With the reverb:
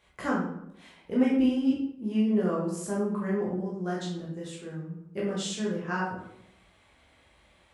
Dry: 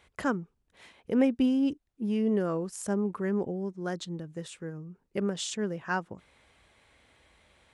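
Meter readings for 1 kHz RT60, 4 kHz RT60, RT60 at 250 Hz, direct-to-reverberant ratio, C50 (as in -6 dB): 0.70 s, 0.50 s, 0.90 s, -6.0 dB, 2.5 dB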